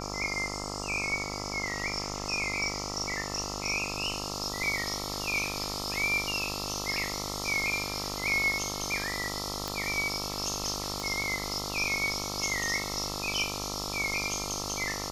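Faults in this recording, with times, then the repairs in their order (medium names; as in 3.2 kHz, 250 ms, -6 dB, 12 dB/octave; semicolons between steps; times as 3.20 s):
buzz 50 Hz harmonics 27 -38 dBFS
9.68 s: pop
11.00 s: pop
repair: de-click; de-hum 50 Hz, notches 27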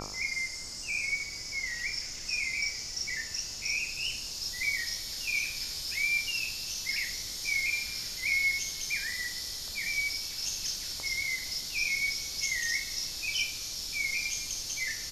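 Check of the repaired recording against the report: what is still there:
nothing left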